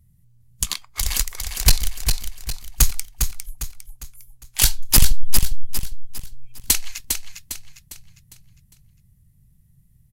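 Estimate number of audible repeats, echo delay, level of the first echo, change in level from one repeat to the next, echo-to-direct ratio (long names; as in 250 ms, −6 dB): 4, 404 ms, −6.0 dB, −8.0 dB, −5.0 dB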